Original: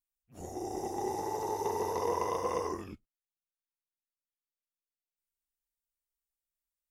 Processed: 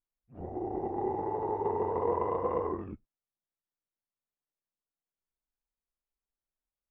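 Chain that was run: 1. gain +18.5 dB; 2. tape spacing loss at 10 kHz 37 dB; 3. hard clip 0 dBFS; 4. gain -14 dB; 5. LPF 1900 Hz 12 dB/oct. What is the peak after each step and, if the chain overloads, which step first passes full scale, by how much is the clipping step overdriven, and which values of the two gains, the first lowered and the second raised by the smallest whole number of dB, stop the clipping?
-1.0, -4.0, -4.0, -18.0, -18.0 dBFS; no overload

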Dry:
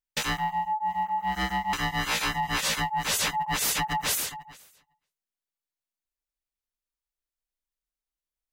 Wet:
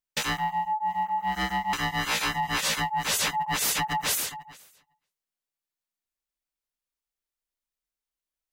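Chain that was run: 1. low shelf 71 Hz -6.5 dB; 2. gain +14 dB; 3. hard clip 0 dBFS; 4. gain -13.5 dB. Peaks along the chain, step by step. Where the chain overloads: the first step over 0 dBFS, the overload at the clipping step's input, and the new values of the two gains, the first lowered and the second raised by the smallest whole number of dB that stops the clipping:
-16.0, -2.0, -2.0, -15.5 dBFS; no overload

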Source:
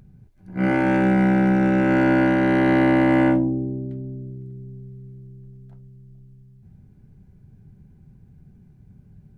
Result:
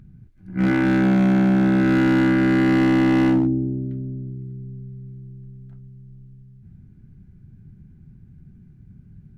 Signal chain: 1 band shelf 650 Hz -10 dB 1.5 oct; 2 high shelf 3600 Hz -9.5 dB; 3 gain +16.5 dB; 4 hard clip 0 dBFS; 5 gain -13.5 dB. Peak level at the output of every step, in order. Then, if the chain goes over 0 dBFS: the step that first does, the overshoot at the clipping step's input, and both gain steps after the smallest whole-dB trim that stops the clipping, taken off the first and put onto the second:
-9.5, -9.5, +7.0, 0.0, -13.5 dBFS; step 3, 7.0 dB; step 3 +9.5 dB, step 5 -6.5 dB

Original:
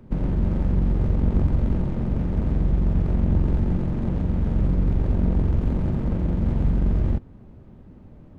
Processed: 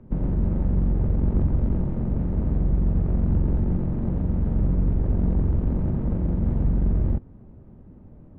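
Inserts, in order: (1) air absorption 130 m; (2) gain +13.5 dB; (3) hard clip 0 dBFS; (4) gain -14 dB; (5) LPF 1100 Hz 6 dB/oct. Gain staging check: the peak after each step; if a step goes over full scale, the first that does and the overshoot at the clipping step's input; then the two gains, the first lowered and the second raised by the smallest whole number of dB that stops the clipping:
-9.5, +4.0, 0.0, -14.0, -14.0 dBFS; step 2, 4.0 dB; step 2 +9.5 dB, step 4 -10 dB

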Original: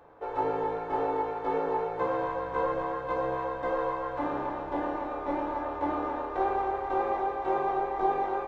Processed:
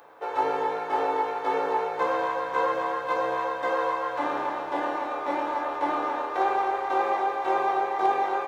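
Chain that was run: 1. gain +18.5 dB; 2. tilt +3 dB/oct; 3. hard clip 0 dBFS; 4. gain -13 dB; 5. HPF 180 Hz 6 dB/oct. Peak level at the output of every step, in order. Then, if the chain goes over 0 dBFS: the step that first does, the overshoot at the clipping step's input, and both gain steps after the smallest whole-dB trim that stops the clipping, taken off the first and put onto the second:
+5.0, +3.0, 0.0, -13.0, -12.5 dBFS; step 1, 3.0 dB; step 1 +15.5 dB, step 4 -10 dB

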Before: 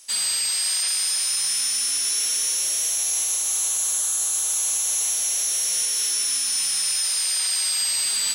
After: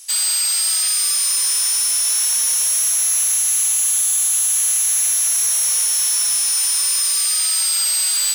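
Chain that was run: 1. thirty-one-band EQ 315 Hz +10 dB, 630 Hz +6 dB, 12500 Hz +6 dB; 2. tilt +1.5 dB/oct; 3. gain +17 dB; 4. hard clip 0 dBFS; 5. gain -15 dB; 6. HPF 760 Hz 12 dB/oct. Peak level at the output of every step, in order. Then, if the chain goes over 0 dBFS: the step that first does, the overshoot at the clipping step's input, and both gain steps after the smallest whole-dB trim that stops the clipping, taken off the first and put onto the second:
-12.0, -7.0, +10.0, 0.0, -15.0, -12.5 dBFS; step 3, 10.0 dB; step 3 +7 dB, step 5 -5 dB

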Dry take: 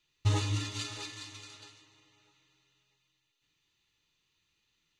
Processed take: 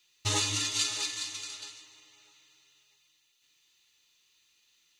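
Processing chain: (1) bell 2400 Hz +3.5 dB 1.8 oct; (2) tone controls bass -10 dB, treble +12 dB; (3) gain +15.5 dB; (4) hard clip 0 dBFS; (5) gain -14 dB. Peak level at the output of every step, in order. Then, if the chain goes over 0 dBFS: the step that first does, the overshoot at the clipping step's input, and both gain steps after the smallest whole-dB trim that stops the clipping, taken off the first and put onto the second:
-16.0, -17.0, -1.5, -1.5, -15.5 dBFS; no overload

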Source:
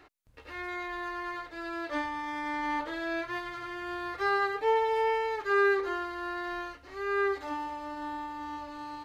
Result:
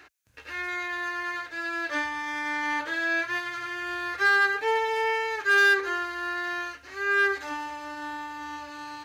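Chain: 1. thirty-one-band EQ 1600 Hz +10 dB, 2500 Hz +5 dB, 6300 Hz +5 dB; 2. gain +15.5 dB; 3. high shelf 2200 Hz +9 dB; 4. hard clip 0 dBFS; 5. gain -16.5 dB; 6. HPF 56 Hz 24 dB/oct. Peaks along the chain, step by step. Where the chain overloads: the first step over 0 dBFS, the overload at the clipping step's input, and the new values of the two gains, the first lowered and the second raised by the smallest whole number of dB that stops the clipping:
-10.5, +5.0, +7.5, 0.0, -16.5, -15.0 dBFS; step 2, 7.5 dB; step 2 +7.5 dB, step 5 -8.5 dB

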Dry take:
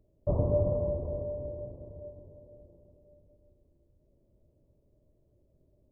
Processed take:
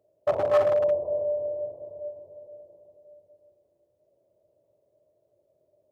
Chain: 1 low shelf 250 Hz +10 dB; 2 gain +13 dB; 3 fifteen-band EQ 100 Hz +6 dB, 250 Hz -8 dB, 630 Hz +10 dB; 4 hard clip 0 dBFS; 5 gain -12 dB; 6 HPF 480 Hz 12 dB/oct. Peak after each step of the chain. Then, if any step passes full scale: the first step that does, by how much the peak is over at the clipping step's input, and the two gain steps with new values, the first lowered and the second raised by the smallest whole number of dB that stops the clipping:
-8.0, +5.0, +8.0, 0.0, -12.0, -11.0 dBFS; step 2, 8.0 dB; step 2 +5 dB, step 5 -4 dB

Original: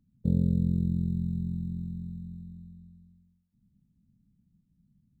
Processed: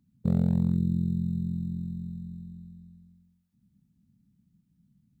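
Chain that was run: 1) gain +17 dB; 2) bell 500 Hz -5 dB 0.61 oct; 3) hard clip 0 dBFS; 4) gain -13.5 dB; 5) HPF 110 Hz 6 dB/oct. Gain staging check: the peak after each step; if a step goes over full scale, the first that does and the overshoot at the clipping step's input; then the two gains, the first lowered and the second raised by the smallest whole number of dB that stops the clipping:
+4.0, +3.5, 0.0, -13.5, -13.0 dBFS; step 1, 3.5 dB; step 1 +13 dB, step 4 -9.5 dB

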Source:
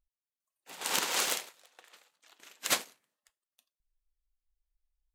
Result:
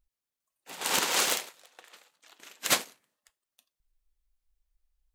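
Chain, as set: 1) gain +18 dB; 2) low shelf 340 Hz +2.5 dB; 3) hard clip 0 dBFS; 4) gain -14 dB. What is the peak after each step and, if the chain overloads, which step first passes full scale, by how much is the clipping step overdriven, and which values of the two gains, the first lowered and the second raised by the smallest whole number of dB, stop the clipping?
+9.0, +9.0, 0.0, -14.0 dBFS; step 1, 9.0 dB; step 1 +9 dB, step 4 -5 dB

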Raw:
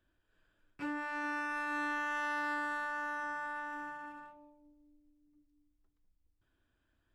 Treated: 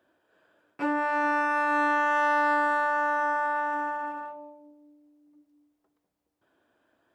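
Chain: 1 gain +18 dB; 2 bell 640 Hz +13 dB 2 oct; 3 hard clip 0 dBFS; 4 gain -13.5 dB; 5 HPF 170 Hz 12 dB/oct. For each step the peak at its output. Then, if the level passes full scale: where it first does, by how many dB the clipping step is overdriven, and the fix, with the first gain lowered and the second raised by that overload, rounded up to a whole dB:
-8.5, -3.0, -3.0, -16.5, -16.5 dBFS; no overload

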